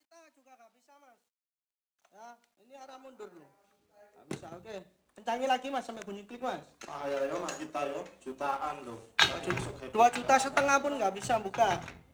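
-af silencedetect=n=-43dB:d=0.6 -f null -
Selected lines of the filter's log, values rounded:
silence_start: 0.00
silence_end: 2.21 | silence_duration: 2.21
silence_start: 3.37
silence_end: 4.31 | silence_duration: 0.94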